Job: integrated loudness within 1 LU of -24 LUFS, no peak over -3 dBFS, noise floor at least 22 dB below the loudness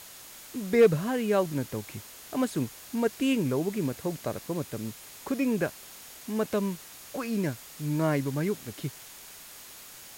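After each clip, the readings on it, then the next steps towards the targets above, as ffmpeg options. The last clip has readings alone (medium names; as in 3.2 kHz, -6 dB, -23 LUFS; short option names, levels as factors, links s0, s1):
steady tone 6.7 kHz; tone level -58 dBFS; noise floor -47 dBFS; noise floor target -52 dBFS; loudness -29.5 LUFS; peak level -11.5 dBFS; loudness target -24.0 LUFS
-> -af "bandreject=f=6700:w=30"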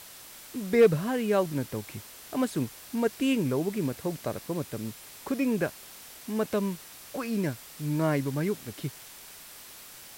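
steady tone not found; noise floor -48 dBFS; noise floor target -52 dBFS
-> -af "afftdn=nr=6:nf=-48"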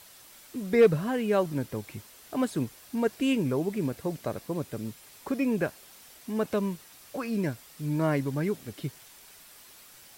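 noise floor -53 dBFS; loudness -29.5 LUFS; peak level -11.5 dBFS; loudness target -24.0 LUFS
-> -af "volume=1.88"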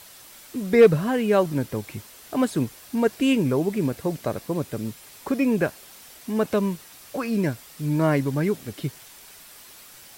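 loudness -24.0 LUFS; peak level -6.0 dBFS; noise floor -47 dBFS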